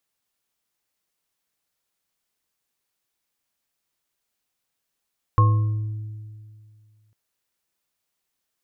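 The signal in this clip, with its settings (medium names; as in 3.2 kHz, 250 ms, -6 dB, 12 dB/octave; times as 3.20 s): sine partials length 1.75 s, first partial 107 Hz, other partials 323/495/1080 Hz, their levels -19/-17/-4 dB, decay 2.18 s, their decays 1.84/0.73/0.53 s, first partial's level -12 dB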